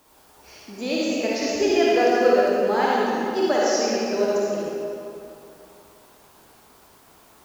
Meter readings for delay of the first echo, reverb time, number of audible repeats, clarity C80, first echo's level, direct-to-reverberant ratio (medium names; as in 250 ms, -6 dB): no echo, 2.7 s, no echo, -2.5 dB, no echo, -6.5 dB